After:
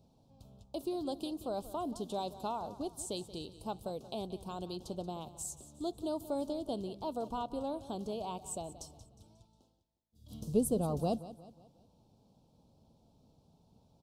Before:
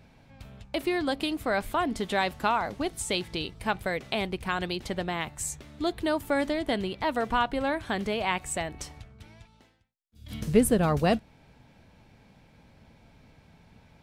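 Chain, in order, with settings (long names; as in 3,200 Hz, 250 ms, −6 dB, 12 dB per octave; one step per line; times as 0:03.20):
Butterworth band-reject 1,900 Hz, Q 0.61
low-shelf EQ 62 Hz −8.5 dB
on a send: repeating echo 180 ms, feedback 43%, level −15.5 dB
on the sum: level −8 dB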